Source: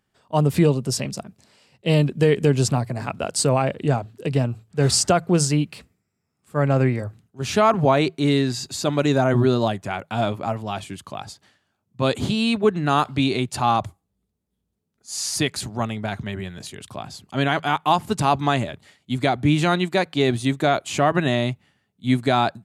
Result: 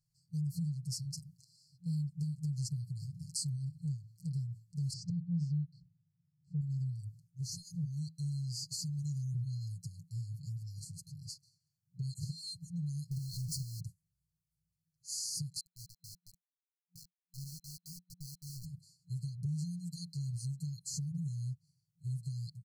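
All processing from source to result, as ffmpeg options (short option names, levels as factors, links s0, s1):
-filter_complex "[0:a]asettb=1/sr,asplit=3[s0][s1][s2];[s0]atrim=end=4.934[s3];[s1]atrim=start=4.93:end=6.61,asetpts=PTS-STARTPTS,afade=t=in:d=0.004:c=qsin,afade=t=out:st=1.676:d=0.004:c=qsin,highpass=140,lowpass=4700,aemphasis=mode=reproduction:type=riaa[s4];[s2]atrim=start=6.606[s5];[s3][s4]acrossfade=d=0.004:c1=hsin:c2=qsin[s6];[s6][s5]acrossfade=d=0.004:c1=qsin:c2=hsin,asettb=1/sr,asplit=3[s7][s8][s9];[s7]atrim=end=13.114[s10];[s8]atrim=start=13.11:end=13.8,asetpts=PTS-STARTPTS,afade=t=in:d=0.004:c=qsin,afade=t=out:st=0.686:d=0.004:c=qsin,aeval=exprs='val(0)+0.5*0.075*sgn(val(0))':c=same,acompressor=threshold=0.0891:ratio=2:attack=3.2:release=140:knee=1:detection=peak[s11];[s9]atrim=start=13.796[s12];[s10][s11]acrossfade=d=0.004:c1=hsin:c2=qsin[s13];[s13][s12]acrossfade=d=0.004:c1=qsin:c2=hsin,asettb=1/sr,asplit=3[s14][s15][s16];[s14]atrim=end=15.604[s17];[s15]atrim=start=15.6:end=18.65,asetpts=PTS-STARTPTS,afade=t=in:d=0.004:c=qsin,afade=t=out:st=3.046:d=0.004:c=qsin,bandpass=f=660:t=q:w=1.5,aeval=exprs='val(0)*gte(abs(val(0)),0.0266)':c=same[s18];[s16]atrim=start=18.646[s19];[s17][s18]acrossfade=d=0.004:c1=hsin:c2=qsin[s20];[s20][s19]acrossfade=d=0.004:c1=qsin:c2=hsin,afftfilt=real='re*(1-between(b*sr/4096,180,4100))':imag='im*(1-between(b*sr/4096,180,4100))':win_size=4096:overlap=0.75,aecho=1:1:6.7:0.72,acompressor=threshold=0.0282:ratio=3,volume=0.447"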